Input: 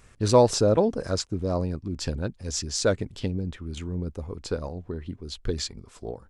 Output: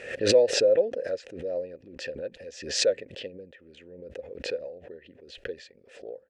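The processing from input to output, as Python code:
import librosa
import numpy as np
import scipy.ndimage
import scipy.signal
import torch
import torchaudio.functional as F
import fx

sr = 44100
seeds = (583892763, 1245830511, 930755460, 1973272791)

y = fx.vowel_filter(x, sr, vowel='e')
y = fx.low_shelf(y, sr, hz=150.0, db=-3.5)
y = fx.pre_swell(y, sr, db_per_s=84.0)
y = F.gain(torch.from_numpy(y), 4.0).numpy()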